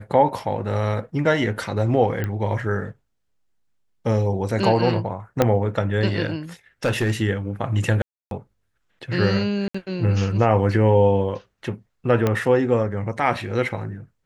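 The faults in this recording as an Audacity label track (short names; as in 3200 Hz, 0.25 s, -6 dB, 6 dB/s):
2.240000	2.240000	pop -14 dBFS
5.420000	5.420000	pop -4 dBFS
6.850000	7.120000	clipped -16 dBFS
8.020000	8.310000	gap 0.292 s
9.680000	9.740000	gap 65 ms
12.270000	12.270000	pop -8 dBFS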